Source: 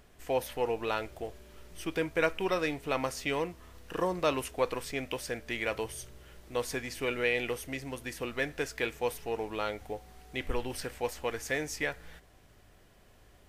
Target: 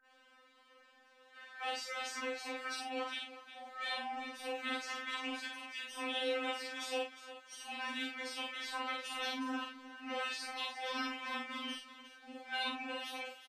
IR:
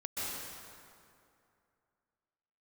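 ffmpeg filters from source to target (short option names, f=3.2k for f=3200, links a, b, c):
-filter_complex "[0:a]areverse,highpass=1.1k,afftfilt=real='re*lt(hypot(re,im),0.0398)':imag='im*lt(hypot(re,im),0.0398)':win_size=1024:overlap=0.75,highshelf=f=6.1k:g=-8.5,afreqshift=-91,acrossover=split=2100[a][b];[b]crystalizer=i=2:c=0[c];[a][c]amix=inputs=2:normalize=0,aeval=exprs='val(0)+0.00141*sin(2*PI*1600*n/s)':c=same,adynamicsmooth=sensitivity=3:basefreq=2.4k,asplit=2[d][e];[e]adelay=49,volume=-2dB[f];[d][f]amix=inputs=2:normalize=0,asplit=2[g][h];[h]aecho=0:1:41|359:0.501|0.224[i];[g][i]amix=inputs=2:normalize=0,aresample=32000,aresample=44100,afftfilt=real='re*3.46*eq(mod(b,12),0)':imag='im*3.46*eq(mod(b,12),0)':win_size=2048:overlap=0.75,volume=7.5dB"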